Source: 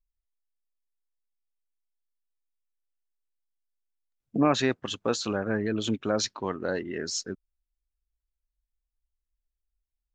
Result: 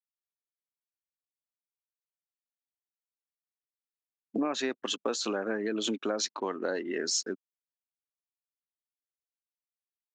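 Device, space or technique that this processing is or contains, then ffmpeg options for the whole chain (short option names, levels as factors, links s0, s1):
ASMR close-microphone chain: -af "anlmdn=0.000398,highpass=f=250:w=0.5412,highpass=f=250:w=1.3066,lowshelf=f=200:g=3.5,acompressor=threshold=0.0316:ratio=6,highshelf=f=6900:g=6,volume=1.33"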